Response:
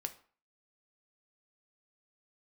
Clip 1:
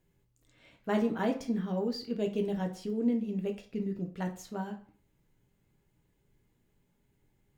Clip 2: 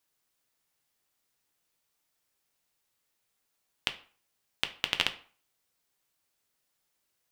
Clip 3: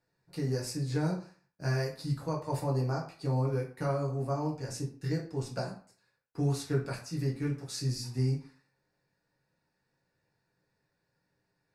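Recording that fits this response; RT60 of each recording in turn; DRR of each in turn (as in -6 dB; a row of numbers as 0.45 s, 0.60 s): 2; 0.45 s, 0.45 s, 0.45 s; 3.0 dB, 7.0 dB, -3.0 dB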